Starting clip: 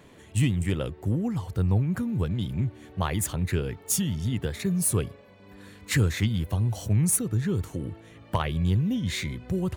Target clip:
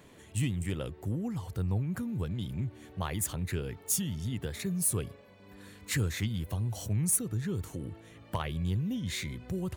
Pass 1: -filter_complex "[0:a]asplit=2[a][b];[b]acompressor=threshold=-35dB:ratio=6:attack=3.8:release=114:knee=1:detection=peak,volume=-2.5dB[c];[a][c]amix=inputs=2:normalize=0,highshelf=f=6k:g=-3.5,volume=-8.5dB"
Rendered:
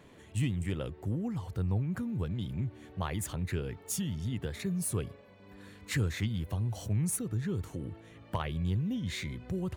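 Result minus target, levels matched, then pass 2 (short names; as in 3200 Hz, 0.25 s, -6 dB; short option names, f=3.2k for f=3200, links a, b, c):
8000 Hz band -5.0 dB
-filter_complex "[0:a]asplit=2[a][b];[b]acompressor=threshold=-35dB:ratio=6:attack=3.8:release=114:knee=1:detection=peak,volume=-2.5dB[c];[a][c]amix=inputs=2:normalize=0,highshelf=f=6k:g=5.5,volume=-8.5dB"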